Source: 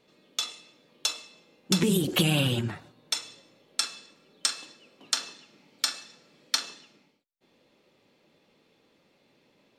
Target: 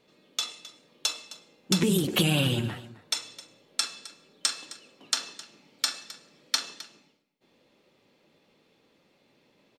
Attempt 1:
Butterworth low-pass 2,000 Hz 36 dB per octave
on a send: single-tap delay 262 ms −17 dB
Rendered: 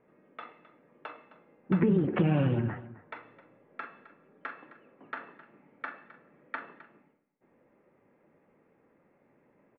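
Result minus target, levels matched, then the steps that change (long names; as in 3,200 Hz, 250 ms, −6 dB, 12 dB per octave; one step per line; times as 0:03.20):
2,000 Hz band −3.0 dB
remove: Butterworth low-pass 2,000 Hz 36 dB per octave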